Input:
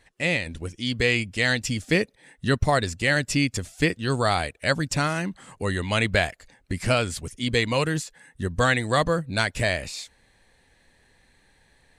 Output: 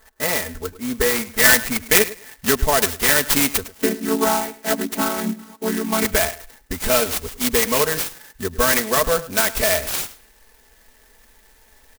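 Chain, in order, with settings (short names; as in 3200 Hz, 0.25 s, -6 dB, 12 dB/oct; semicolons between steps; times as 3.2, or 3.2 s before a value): 3.63–6.05 chord vocoder minor triad, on F#3; bell 170 Hz -15 dB 0.84 oct; notch 740 Hz, Q 13; comb 4.6 ms, depth 100%; limiter -11.5 dBFS, peak gain reduction 6.5 dB; low-pass sweep 1400 Hz -> 6300 Hz, 1.11–3.46; feedback echo 0.105 s, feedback 18%, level -17 dB; clock jitter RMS 0.088 ms; gain +4.5 dB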